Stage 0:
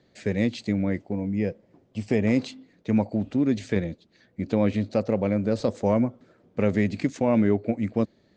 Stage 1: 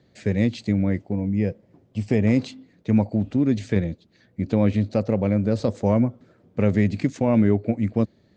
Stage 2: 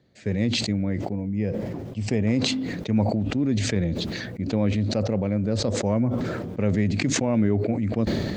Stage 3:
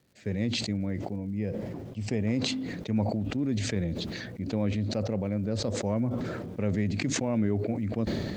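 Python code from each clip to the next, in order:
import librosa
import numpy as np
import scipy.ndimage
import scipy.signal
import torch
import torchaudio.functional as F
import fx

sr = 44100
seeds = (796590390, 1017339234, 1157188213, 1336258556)

y1 = fx.peak_eq(x, sr, hz=99.0, db=7.0, octaves=2.0)
y2 = fx.sustainer(y1, sr, db_per_s=26.0)
y2 = F.gain(torch.from_numpy(y2), -4.0).numpy()
y3 = fx.dmg_crackle(y2, sr, seeds[0], per_s=380.0, level_db=-50.0)
y3 = F.gain(torch.from_numpy(y3), -5.5).numpy()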